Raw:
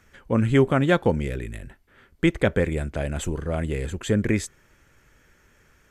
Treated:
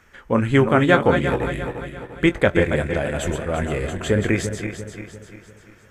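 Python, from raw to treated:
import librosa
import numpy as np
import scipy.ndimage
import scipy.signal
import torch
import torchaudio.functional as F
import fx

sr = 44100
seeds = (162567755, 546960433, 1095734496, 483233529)

y = fx.reverse_delay_fb(x, sr, ms=173, feedback_pct=67, wet_db=-7.0)
y = fx.peak_eq(y, sr, hz=1200.0, db=6.0, octaves=3.0)
y = fx.doubler(y, sr, ms=21.0, db=-11.0)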